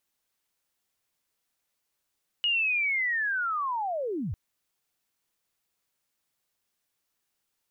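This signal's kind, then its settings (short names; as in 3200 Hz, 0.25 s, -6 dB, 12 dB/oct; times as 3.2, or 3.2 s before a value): chirp linear 2900 Hz -> 69 Hz -22.5 dBFS -> -29 dBFS 1.90 s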